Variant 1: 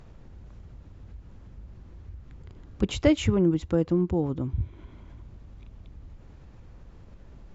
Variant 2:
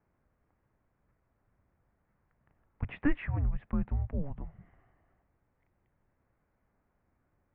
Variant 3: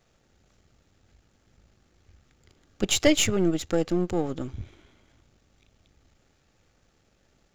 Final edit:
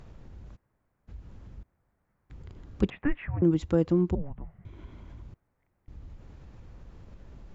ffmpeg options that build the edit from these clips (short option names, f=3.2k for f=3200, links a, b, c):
-filter_complex "[1:a]asplit=5[a][b][c][d][e];[0:a]asplit=6[f][g][h][i][j][k];[f]atrim=end=0.57[l];[a]atrim=start=0.55:end=1.09[m];[g]atrim=start=1.07:end=1.632[n];[b]atrim=start=1.628:end=2.302[o];[h]atrim=start=2.298:end=2.902[p];[c]atrim=start=2.898:end=3.422[q];[i]atrim=start=3.418:end=4.152[r];[d]atrim=start=4.148:end=4.652[s];[j]atrim=start=4.648:end=5.342[t];[e]atrim=start=5.338:end=5.882[u];[k]atrim=start=5.878[v];[l][m]acrossfade=d=0.02:c1=tri:c2=tri[w];[w][n]acrossfade=d=0.02:c1=tri:c2=tri[x];[x][o]acrossfade=d=0.004:c1=hsin:c2=hsin[y];[y][p]acrossfade=d=0.004:c1=hsin:c2=hsin[z];[z][q]acrossfade=d=0.004:c1=hsin:c2=hsin[aa];[aa][r]acrossfade=d=0.004:c1=hsin:c2=hsin[ab];[ab][s]acrossfade=d=0.004:c1=hsin:c2=hsin[ac];[ac][t]acrossfade=d=0.004:c1=hsin:c2=hsin[ad];[ad][u]acrossfade=d=0.004:c1=hsin:c2=hsin[ae];[ae][v]acrossfade=d=0.004:c1=hsin:c2=hsin"